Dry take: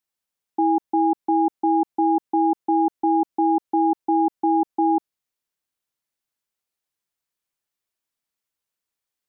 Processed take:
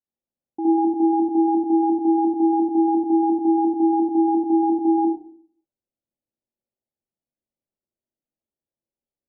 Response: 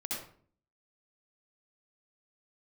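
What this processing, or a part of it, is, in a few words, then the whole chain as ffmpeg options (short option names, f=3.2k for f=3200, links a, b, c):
next room: -filter_complex "[0:a]lowpass=f=670:w=0.5412,lowpass=f=670:w=1.3066[a];[1:a]atrim=start_sample=2205[b];[a][b]afir=irnorm=-1:irlink=0"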